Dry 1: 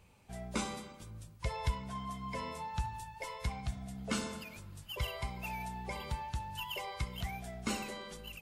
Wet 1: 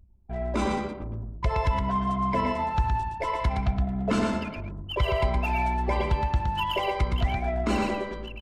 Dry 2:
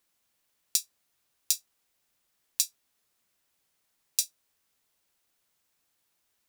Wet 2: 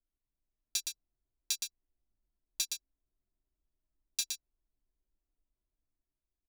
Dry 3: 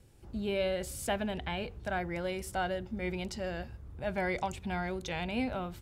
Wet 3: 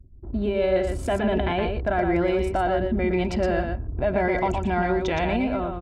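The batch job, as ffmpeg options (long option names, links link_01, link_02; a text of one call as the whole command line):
ffmpeg -i in.wav -filter_complex "[0:a]asplit=2[link_01][link_02];[link_02]asoftclip=type=tanh:threshold=-14dB,volume=-3.5dB[link_03];[link_01][link_03]amix=inputs=2:normalize=0,lowpass=frequency=1100:poles=1,anlmdn=0.00631,equalizer=frequency=110:width=1.9:gain=-3,aecho=1:1:3:0.45,alimiter=level_in=3.5dB:limit=-24dB:level=0:latency=1:release=65,volume=-3.5dB,dynaudnorm=framelen=100:gausssize=11:maxgain=4dB,asplit=2[link_04][link_05];[link_05]aecho=0:1:117:0.562[link_06];[link_04][link_06]amix=inputs=2:normalize=0,volume=8dB" out.wav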